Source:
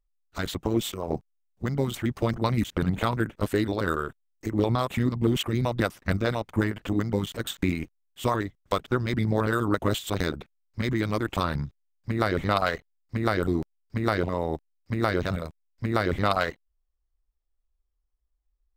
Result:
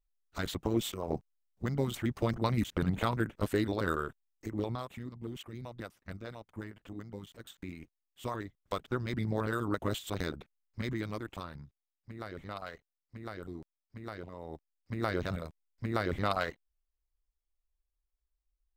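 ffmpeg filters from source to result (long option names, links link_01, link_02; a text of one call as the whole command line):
ffmpeg -i in.wav -af "volume=16dB,afade=type=out:start_time=4.04:duration=0.96:silence=0.223872,afade=type=in:start_time=7.66:duration=1.35:silence=0.316228,afade=type=out:start_time=10.82:duration=0.69:silence=0.316228,afade=type=in:start_time=14.37:duration=0.78:silence=0.281838" out.wav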